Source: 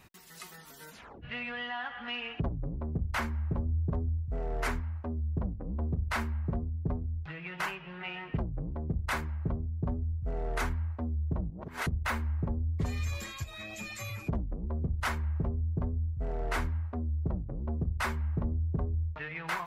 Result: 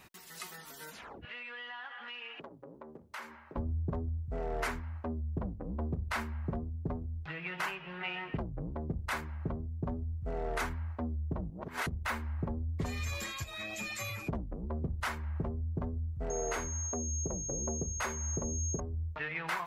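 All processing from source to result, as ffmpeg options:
ffmpeg -i in.wav -filter_complex "[0:a]asettb=1/sr,asplit=3[link_01][link_02][link_03];[link_01]atrim=end=1.254[link_04];[link_02]atrim=start=1.25:end=3.56,asetpts=PTS-STARTPTS,afade=type=in:duration=0.004:curve=qsin,afade=type=out:start_time=2.306:duration=0.004:curve=qsin,highpass=410,bandreject=frequency=710:width=8.8,acompressor=threshold=-46dB:ratio=3:attack=3.2:release=140:knee=1:detection=peak[link_05];[link_03]atrim=start=3.556[link_06];[link_04][link_05]acrossfade=duration=0.004:curve1=hsin:curve2=qsin[link_07];[link_07][link_06]acrossfade=duration=0.004:curve1=qsin:curve2=hsin,asettb=1/sr,asplit=3[link_08][link_09][link_10];[link_08]atrim=end=16.304[link_11];[link_09]atrim=start=16.3:end=18.8,asetpts=PTS-STARTPTS,afade=type=in:duration=0.004:curve=qsin,afade=type=out:start_time=2.496:duration=0.004:curve=qsin,equalizer=frequency=470:width=1.7:gain=8,aeval=exprs='val(0)+0.0126*sin(2*PI*6500*n/s)':channel_layout=same[link_12];[link_10]atrim=start=18.796[link_13];[link_11][link_12]acrossfade=duration=0.004:curve1=hsin:curve2=qsin[link_14];[link_14][link_13]acrossfade=duration=0.004:curve1=qsin:curve2=hsin,lowshelf=frequency=170:gain=-8,alimiter=level_in=3dB:limit=-24dB:level=0:latency=1:release=291,volume=-3dB,volume=2.5dB" out.wav

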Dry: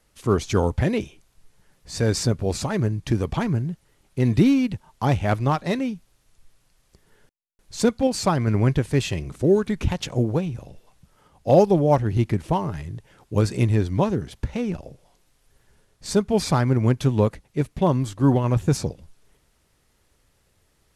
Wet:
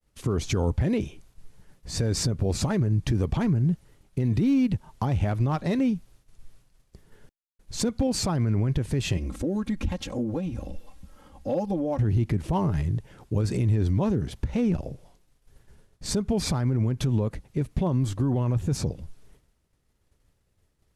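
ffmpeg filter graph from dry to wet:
ffmpeg -i in.wav -filter_complex "[0:a]asettb=1/sr,asplit=3[link_01][link_02][link_03];[link_01]atrim=end=9.174[link_04];[link_02]atrim=start=9.17:end=11.99,asetpts=PTS-STARTPTS,afade=type=in:duration=0.004:curve=qsin,afade=type=out:start_time=2.816:duration=0.004:curve=qsin,aecho=1:1:3.7:0.89,atrim=end_sample=124362,acompressor=threshold=-36dB:ratio=2.5:attack=3.2:release=140:knee=1:detection=peak,asoftclip=type=hard:threshold=-22dB[link_05];[link_03]atrim=start=11.986[link_06];[link_04][link_05]acrossfade=duration=0.004:curve1=hsin:curve2=qsin[link_07];[link_07][link_06]acrossfade=duration=0.004:curve1=qsin:curve2=hsin,agate=range=-33dB:threshold=-55dB:ratio=3:detection=peak,lowshelf=frequency=410:gain=8,alimiter=limit=-16.5dB:level=0:latency=1:release=102" out.wav

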